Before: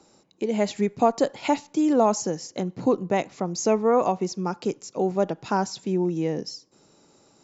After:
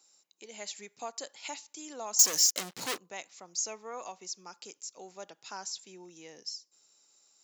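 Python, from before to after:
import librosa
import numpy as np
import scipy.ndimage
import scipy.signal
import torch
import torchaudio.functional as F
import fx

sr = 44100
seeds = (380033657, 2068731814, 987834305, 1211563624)

y = fx.leveller(x, sr, passes=5, at=(2.19, 2.98))
y = np.diff(y, prepend=0.0)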